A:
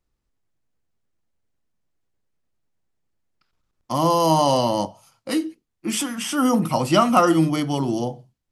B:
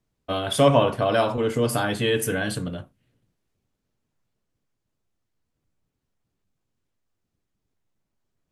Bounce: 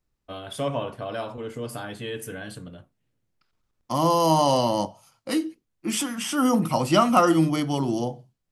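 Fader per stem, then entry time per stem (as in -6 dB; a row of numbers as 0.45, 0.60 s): -2.0, -10.5 dB; 0.00, 0.00 s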